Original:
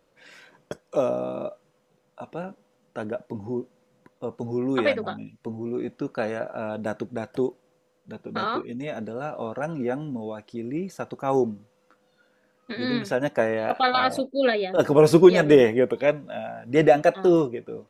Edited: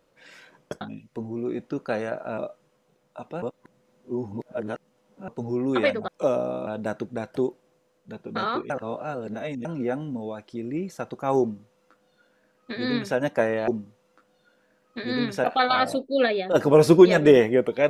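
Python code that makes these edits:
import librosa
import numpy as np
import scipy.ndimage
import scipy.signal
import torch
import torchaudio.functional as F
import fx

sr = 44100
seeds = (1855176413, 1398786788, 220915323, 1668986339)

y = fx.edit(x, sr, fx.swap(start_s=0.81, length_s=0.59, other_s=5.1, other_length_s=1.57),
    fx.reverse_span(start_s=2.44, length_s=1.86),
    fx.reverse_span(start_s=8.7, length_s=0.95),
    fx.duplicate(start_s=11.41, length_s=1.76, to_s=13.68), tone=tone)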